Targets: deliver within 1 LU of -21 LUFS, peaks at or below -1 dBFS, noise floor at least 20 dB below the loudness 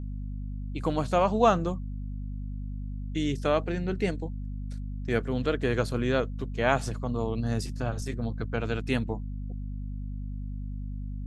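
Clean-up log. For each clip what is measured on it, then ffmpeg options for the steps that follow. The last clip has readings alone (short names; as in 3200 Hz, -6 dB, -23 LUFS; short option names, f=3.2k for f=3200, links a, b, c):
hum 50 Hz; harmonics up to 250 Hz; hum level -32 dBFS; loudness -30.5 LUFS; peak -8.0 dBFS; loudness target -21.0 LUFS
-> -af "bandreject=f=50:t=h:w=6,bandreject=f=100:t=h:w=6,bandreject=f=150:t=h:w=6,bandreject=f=200:t=h:w=6,bandreject=f=250:t=h:w=6"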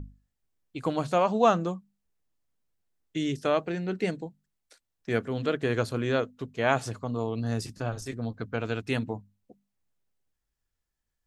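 hum none; loudness -29.5 LUFS; peak -8.5 dBFS; loudness target -21.0 LUFS
-> -af "volume=8.5dB,alimiter=limit=-1dB:level=0:latency=1"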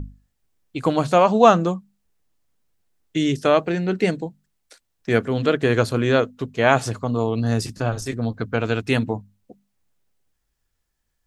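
loudness -21.0 LUFS; peak -1.0 dBFS; noise floor -74 dBFS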